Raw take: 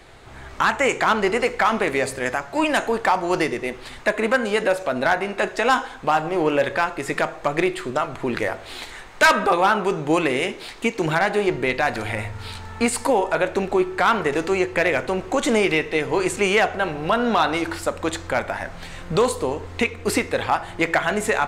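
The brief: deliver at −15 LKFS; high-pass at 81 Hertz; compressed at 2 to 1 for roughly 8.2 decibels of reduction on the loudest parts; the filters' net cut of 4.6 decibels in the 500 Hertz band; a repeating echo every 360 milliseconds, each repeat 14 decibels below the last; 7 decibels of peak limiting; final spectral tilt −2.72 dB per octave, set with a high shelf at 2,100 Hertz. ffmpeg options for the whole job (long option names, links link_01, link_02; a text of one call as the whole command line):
ffmpeg -i in.wav -af "highpass=81,equalizer=frequency=500:width_type=o:gain=-6.5,highshelf=frequency=2100:gain=8.5,acompressor=threshold=-22dB:ratio=2,alimiter=limit=-13dB:level=0:latency=1,aecho=1:1:360|720:0.2|0.0399,volume=10.5dB" out.wav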